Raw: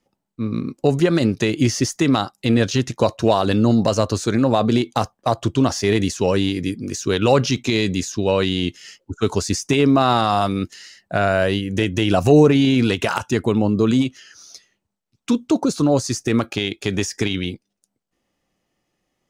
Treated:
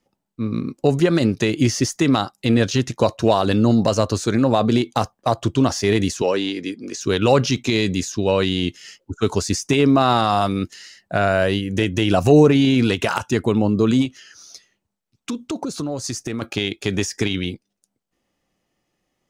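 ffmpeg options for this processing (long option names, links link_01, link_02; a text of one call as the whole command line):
ffmpeg -i in.wav -filter_complex "[0:a]asettb=1/sr,asplit=3[link_01][link_02][link_03];[link_01]atrim=end=6.224[link_04];[link_02]atrim=start=6.22:end=7.01,asetpts=PTS-STARTPTS,afade=type=in:duration=0.004:curve=qsin,afade=type=out:start_time=0.786:duration=0.004:curve=qsin,acrossover=split=240 7300:gain=0.0891 1 0.2[link_05][link_06][link_07];[link_05][link_06][link_07]amix=inputs=3:normalize=0[link_08];[link_03]atrim=start=7.006[link_09];[link_04][link_08]acrossfade=duration=0.004:curve1=hsin:curve2=qsin[link_10];[link_10][link_09]acrossfade=duration=0.004:curve1=qsin:curve2=hsin,asettb=1/sr,asplit=3[link_11][link_12][link_13];[link_11]atrim=end=14.054[link_14];[link_12]atrim=start=14.05:end=16.42,asetpts=PTS-STARTPTS,afade=type=in:duration=0.004:curve=qsin,afade=type=out:start_time=2.366:duration=0.004:curve=qsin,acompressor=threshold=-22dB:ratio=6:attack=3.2:release=140:knee=1:detection=peak[link_15];[link_13]atrim=start=16.416[link_16];[link_14][link_15]acrossfade=duration=0.004:curve1=hsin:curve2=qsin[link_17];[link_17][link_16]acrossfade=duration=0.004:curve1=qsin:curve2=hsin" out.wav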